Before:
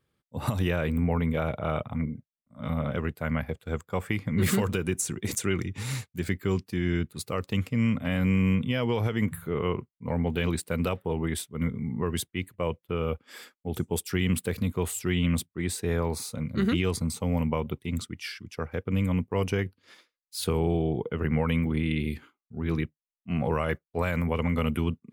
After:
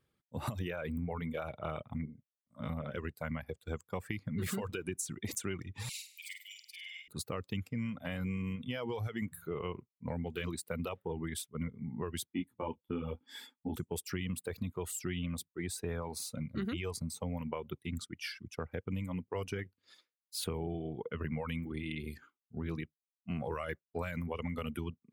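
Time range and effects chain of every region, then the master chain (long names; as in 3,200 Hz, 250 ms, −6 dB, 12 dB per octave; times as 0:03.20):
0:05.89–0:07.08: Butterworth high-pass 2,200 Hz 72 dB per octave + flutter between parallel walls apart 8.5 metres, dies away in 0.92 s + highs frequency-modulated by the lows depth 0.84 ms
0:12.27–0:13.76: hollow resonant body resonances 260/870/3,400 Hz, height 16 dB + micro pitch shift up and down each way 30 cents
whole clip: reverb reduction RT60 1.6 s; downward compressor 3 to 1, threshold −33 dBFS; level −2.5 dB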